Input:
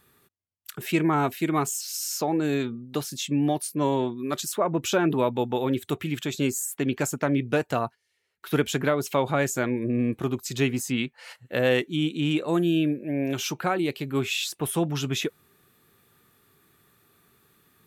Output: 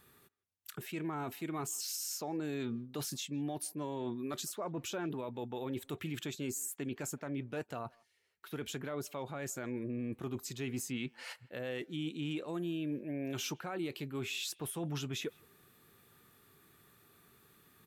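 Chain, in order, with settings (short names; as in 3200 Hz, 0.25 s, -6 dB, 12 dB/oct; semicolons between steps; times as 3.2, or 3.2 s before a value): reverse; compressor 16:1, threshold -31 dBFS, peak gain reduction 15 dB; reverse; limiter -27.5 dBFS, peak gain reduction 8.5 dB; speakerphone echo 0.16 s, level -24 dB; gain -2 dB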